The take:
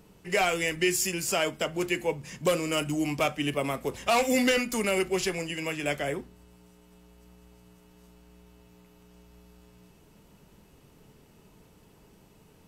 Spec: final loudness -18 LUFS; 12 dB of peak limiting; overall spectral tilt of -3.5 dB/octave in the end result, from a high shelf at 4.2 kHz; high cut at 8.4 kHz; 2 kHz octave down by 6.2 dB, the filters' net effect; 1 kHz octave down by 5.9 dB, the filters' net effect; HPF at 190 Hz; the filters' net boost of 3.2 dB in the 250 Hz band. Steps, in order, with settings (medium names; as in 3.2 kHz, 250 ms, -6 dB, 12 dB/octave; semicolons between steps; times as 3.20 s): high-pass 190 Hz; low-pass 8.4 kHz; peaking EQ 250 Hz +6 dB; peaking EQ 1 kHz -8.5 dB; peaking EQ 2 kHz -8.5 dB; treble shelf 4.2 kHz +9 dB; trim +15 dB; peak limiter -9 dBFS